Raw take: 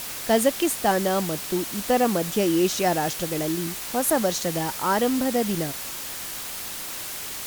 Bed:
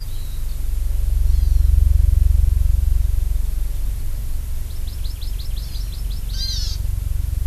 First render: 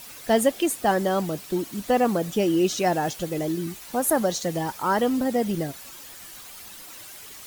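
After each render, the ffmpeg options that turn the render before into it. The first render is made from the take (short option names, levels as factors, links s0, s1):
-af "afftdn=nr=11:nf=-34"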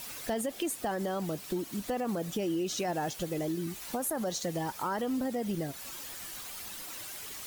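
-af "alimiter=limit=0.141:level=0:latency=1:release=34,acompressor=threshold=0.0178:ratio=2"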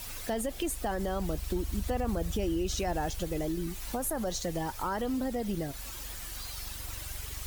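-filter_complex "[1:a]volume=0.0891[s0];[0:a][s0]amix=inputs=2:normalize=0"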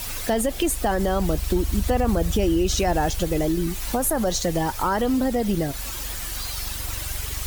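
-af "volume=3.16"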